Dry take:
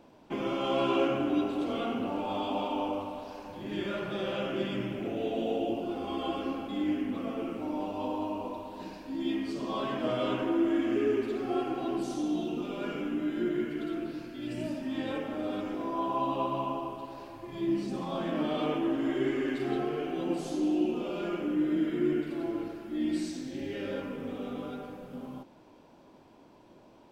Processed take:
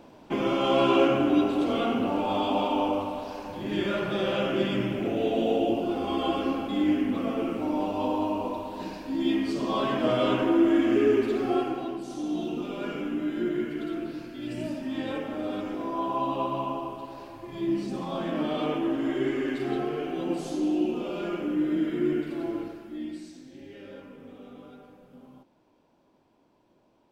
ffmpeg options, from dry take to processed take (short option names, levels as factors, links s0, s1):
-af "volume=4.22,afade=t=out:st=11.46:d=0.55:silence=0.298538,afade=t=in:st=12.01:d=0.43:silence=0.473151,afade=t=out:st=22.54:d=0.65:silence=0.281838"